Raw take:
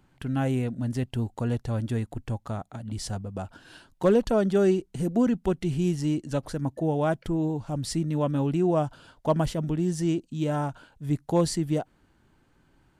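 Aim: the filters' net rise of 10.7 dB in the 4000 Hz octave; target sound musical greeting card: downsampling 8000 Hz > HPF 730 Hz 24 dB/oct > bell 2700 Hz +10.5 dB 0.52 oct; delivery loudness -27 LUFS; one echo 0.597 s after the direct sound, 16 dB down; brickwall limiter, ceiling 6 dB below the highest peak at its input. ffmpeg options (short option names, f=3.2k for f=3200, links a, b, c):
-af "equalizer=f=4k:t=o:g=9,alimiter=limit=-17.5dB:level=0:latency=1,aecho=1:1:597:0.158,aresample=8000,aresample=44100,highpass=f=730:w=0.5412,highpass=f=730:w=1.3066,equalizer=f=2.7k:t=o:w=0.52:g=10.5,volume=10dB"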